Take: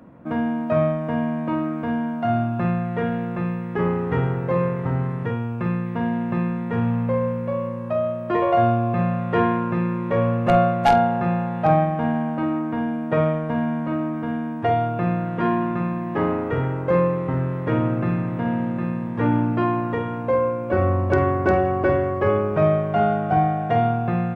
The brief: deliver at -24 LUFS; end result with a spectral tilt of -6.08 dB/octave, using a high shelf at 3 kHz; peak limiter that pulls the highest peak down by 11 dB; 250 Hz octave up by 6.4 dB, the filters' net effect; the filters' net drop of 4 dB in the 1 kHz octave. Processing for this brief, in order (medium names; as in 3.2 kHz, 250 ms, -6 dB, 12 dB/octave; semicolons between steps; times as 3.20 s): peaking EQ 250 Hz +8.5 dB; peaking EQ 1 kHz -6.5 dB; treble shelf 3 kHz -8.5 dB; trim -0.5 dB; peak limiter -16.5 dBFS